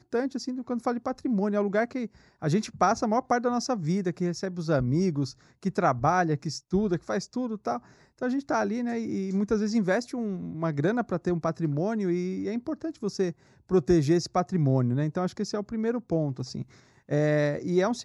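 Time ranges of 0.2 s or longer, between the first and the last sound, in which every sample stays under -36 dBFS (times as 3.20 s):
2.06–2.42 s
5.31–5.65 s
7.78–8.22 s
13.31–13.71 s
16.62–17.09 s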